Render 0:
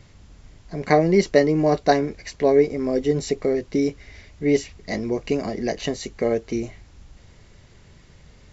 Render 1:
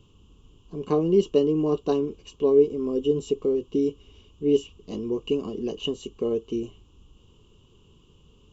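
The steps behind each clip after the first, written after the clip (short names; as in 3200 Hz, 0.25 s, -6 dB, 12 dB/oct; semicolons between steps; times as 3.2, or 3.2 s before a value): EQ curve 130 Hz 0 dB, 440 Hz +7 dB, 650 Hz -12 dB, 1100 Hz +5 dB, 2000 Hz -28 dB, 2900 Hz +12 dB, 4400 Hz -12 dB, 8500 Hz +2 dB; gain -7.5 dB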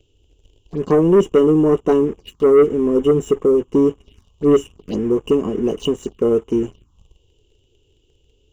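sample leveller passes 2; envelope phaser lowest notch 180 Hz, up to 4400 Hz, full sweep at -21 dBFS; gain +3 dB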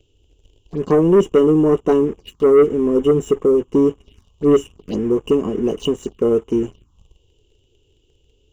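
nothing audible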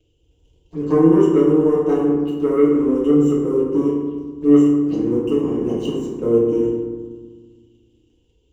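reverb RT60 1.5 s, pre-delay 3 ms, DRR -6 dB; gain -10 dB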